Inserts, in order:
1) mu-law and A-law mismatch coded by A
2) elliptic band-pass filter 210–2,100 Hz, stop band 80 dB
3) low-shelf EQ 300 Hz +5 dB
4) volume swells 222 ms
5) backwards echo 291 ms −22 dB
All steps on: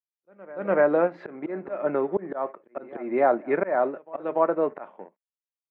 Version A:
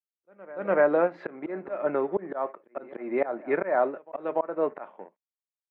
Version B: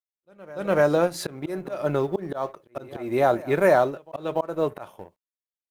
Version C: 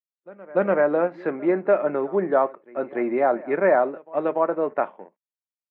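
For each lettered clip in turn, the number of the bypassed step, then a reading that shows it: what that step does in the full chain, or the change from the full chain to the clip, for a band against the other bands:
3, 2 kHz band +2.5 dB
2, 125 Hz band +9.5 dB
4, change in crest factor −2.5 dB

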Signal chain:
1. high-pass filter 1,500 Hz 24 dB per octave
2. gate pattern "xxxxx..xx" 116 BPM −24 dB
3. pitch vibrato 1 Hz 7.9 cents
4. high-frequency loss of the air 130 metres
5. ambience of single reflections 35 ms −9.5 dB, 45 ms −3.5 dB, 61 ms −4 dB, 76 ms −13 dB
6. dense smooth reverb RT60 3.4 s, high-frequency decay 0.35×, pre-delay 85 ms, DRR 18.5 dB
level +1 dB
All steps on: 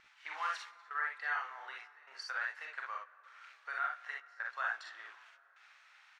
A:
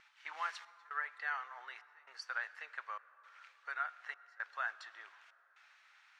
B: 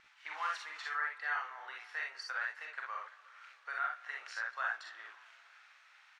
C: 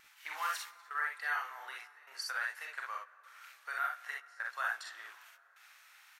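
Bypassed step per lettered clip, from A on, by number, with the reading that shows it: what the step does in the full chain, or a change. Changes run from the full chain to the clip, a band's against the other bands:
5, echo-to-direct ratio 0.0 dB to −18.5 dB
2, 8 kHz band +1.5 dB
4, 8 kHz band +9.5 dB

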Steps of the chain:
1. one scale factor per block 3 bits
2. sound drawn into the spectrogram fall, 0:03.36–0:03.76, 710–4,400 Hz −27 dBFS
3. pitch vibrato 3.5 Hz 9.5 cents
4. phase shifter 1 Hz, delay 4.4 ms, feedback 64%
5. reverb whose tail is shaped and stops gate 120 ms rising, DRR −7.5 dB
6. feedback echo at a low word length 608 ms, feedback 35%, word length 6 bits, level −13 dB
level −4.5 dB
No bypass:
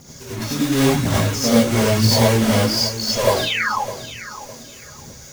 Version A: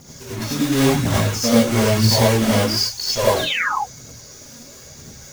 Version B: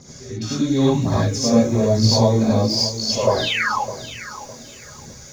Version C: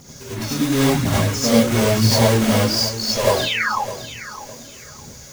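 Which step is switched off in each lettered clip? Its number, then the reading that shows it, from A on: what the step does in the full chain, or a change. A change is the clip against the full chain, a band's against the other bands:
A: 6, change in momentary loudness spread −8 LU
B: 1, distortion level −11 dB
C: 3, change in momentary loudness spread +2 LU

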